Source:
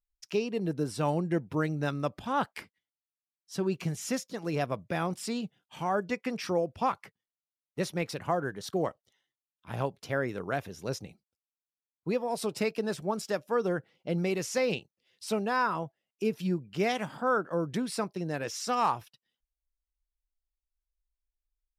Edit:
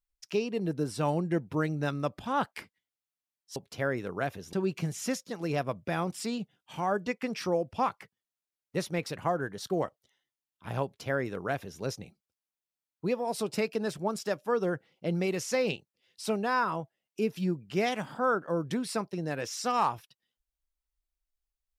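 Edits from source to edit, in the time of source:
0:09.87–0:10.84: duplicate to 0:03.56

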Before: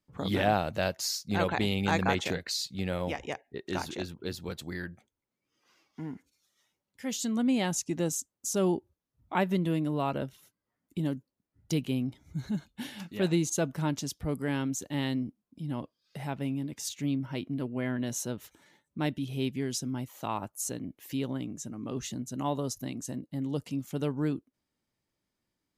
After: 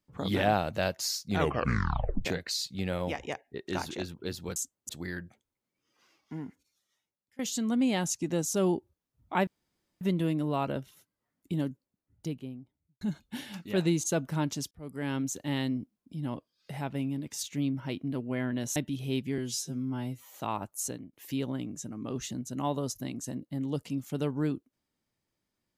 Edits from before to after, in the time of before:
0:01.31: tape stop 0.94 s
0:06.03–0:07.06: fade out, to −22.5 dB
0:08.13–0:08.46: move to 0:04.56
0:09.47: splice in room tone 0.54 s
0:11.05–0:12.47: fade out and dull
0:14.17–0:14.64: fade in
0:18.22–0:19.05: remove
0:19.67–0:20.15: time-stretch 2×
0:20.69–0:20.94: fade out, to −21.5 dB

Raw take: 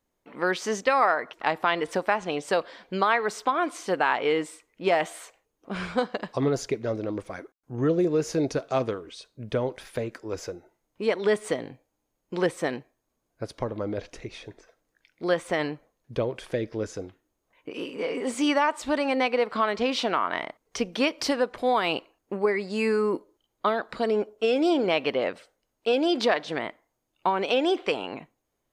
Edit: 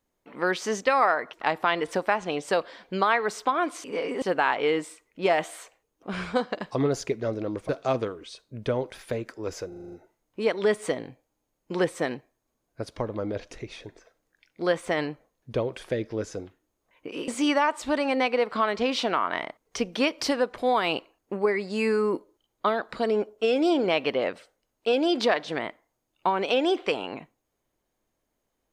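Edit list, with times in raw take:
0:07.31–0:08.55: remove
0:10.54: stutter 0.04 s, 7 plays
0:17.90–0:18.28: move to 0:03.84

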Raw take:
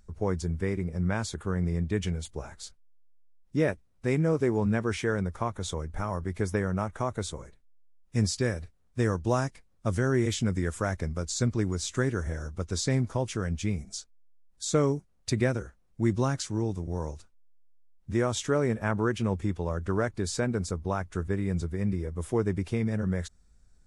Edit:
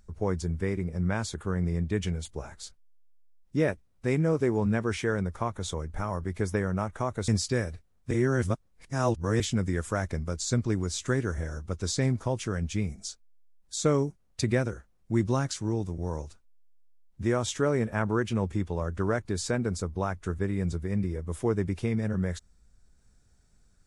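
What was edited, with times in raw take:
0:07.28–0:08.17: remove
0:09.00–0:10.29: reverse

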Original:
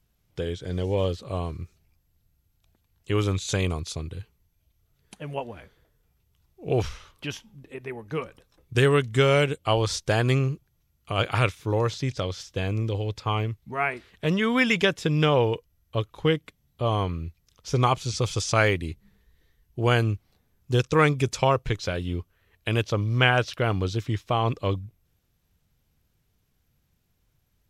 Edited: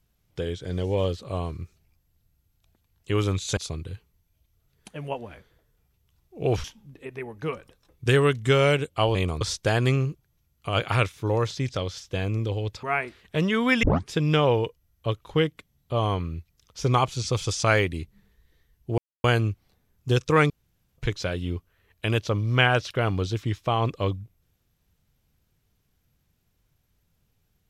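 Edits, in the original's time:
0:03.57–0:03.83: move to 0:09.84
0:06.90–0:07.33: remove
0:13.26–0:13.72: remove
0:14.72: tape start 0.29 s
0:19.87: splice in silence 0.26 s
0:21.13–0:21.61: fill with room tone

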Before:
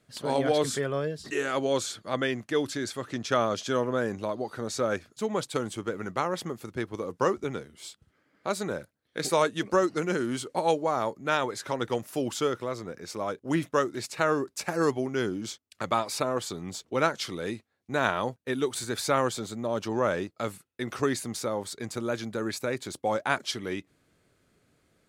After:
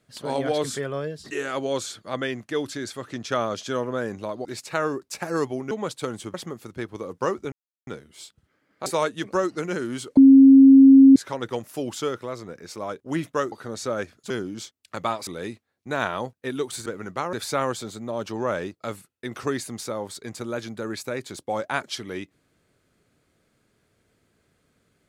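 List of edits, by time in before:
0:04.45–0:05.23: swap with 0:13.91–0:15.17
0:05.86–0:06.33: move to 0:18.89
0:07.51: splice in silence 0.35 s
0:08.50–0:09.25: remove
0:10.56–0:11.55: beep over 270 Hz −7 dBFS
0:16.14–0:17.30: remove

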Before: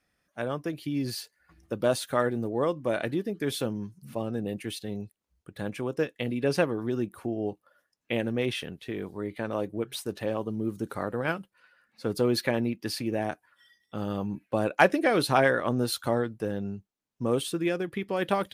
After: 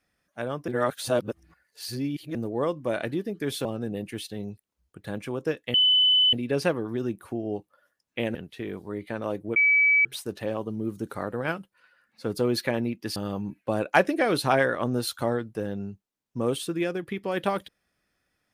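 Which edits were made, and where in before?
0:00.68–0:02.35: reverse
0:03.65–0:04.17: remove
0:06.26: insert tone 3,010 Hz −16.5 dBFS 0.59 s
0:08.28–0:08.64: remove
0:09.85: insert tone 2,290 Hz −16.5 dBFS 0.49 s
0:12.96–0:14.01: remove

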